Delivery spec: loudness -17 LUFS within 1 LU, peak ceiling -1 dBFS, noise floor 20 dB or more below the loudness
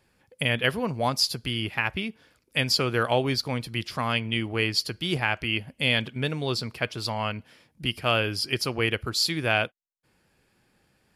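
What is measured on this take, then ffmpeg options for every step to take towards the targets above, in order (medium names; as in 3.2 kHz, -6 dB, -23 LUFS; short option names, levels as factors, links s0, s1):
loudness -26.5 LUFS; peak level -9.0 dBFS; loudness target -17.0 LUFS
-> -af "volume=2.99,alimiter=limit=0.891:level=0:latency=1"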